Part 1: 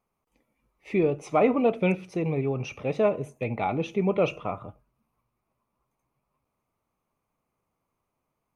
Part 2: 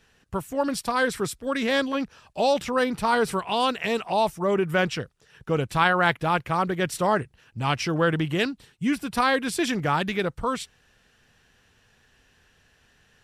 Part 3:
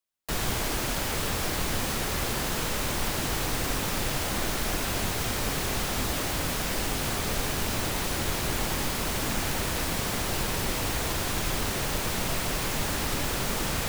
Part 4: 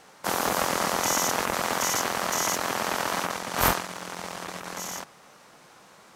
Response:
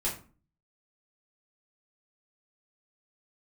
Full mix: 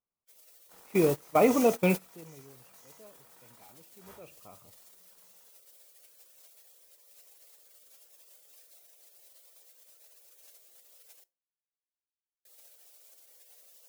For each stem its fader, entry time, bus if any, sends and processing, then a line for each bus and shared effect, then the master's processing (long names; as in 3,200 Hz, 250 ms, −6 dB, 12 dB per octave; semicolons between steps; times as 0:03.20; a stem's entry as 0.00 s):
0:02.04 −1 dB → 0:02.76 −14 dB → 0:03.98 −14 dB → 0:04.58 −2 dB, 0.00 s, no send, no processing
muted
+2.5 dB, 0.00 s, muted 0:11.24–0:12.45, send −21 dB, high-pass filter 880 Hz 24 dB per octave; gate on every frequency bin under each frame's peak −15 dB weak
−9.0 dB, 0.45 s, send −5.5 dB, reverb reduction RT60 1.7 s; tuned comb filter 480 Hz, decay 0.46 s, mix 70%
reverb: on, RT60 0.40 s, pre-delay 4 ms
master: noise gate −26 dBFS, range −18 dB